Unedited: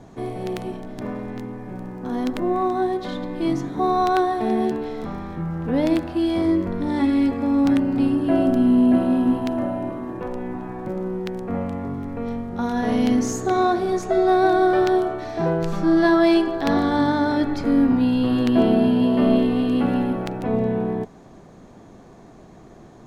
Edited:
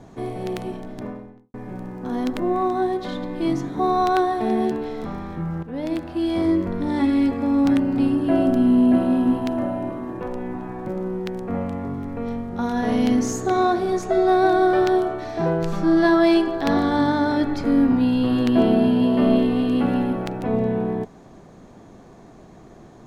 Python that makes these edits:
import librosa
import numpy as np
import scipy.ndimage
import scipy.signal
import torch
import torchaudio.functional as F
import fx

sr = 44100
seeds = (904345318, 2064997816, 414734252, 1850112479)

y = fx.studio_fade_out(x, sr, start_s=0.84, length_s=0.7)
y = fx.edit(y, sr, fx.fade_in_from(start_s=5.63, length_s=0.8, floor_db=-12.5), tone=tone)